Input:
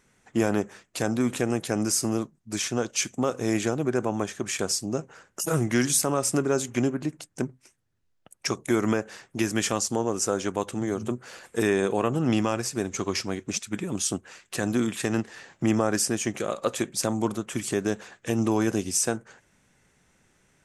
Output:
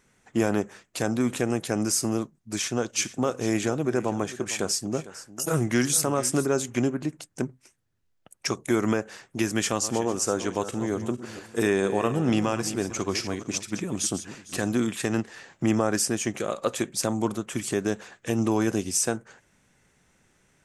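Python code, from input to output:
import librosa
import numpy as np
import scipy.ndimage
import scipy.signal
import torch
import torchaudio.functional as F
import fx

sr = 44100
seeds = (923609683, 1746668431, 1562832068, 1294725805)

y = fx.echo_single(x, sr, ms=452, db=-16.0, at=(2.86, 6.45), fade=0.02)
y = fx.reverse_delay_fb(y, sr, ms=227, feedback_pct=41, wet_db=-11.5, at=(9.58, 14.78))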